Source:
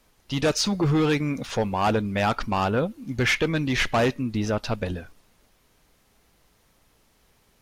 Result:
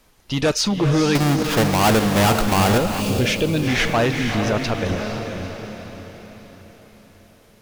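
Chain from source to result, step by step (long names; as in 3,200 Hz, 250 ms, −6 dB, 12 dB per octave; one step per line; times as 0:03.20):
0:01.15–0:02.78: each half-wave held at its own peak
feedback delay with all-pass diffusion 463 ms, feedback 49%, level −6.5 dB
0:03.00–0:03.68: gain on a spectral selection 660–2,300 Hz −9 dB
in parallel at +2 dB: brickwall limiter −19.5 dBFS, peak gain reduction 10 dB
on the sum: level −1.5 dB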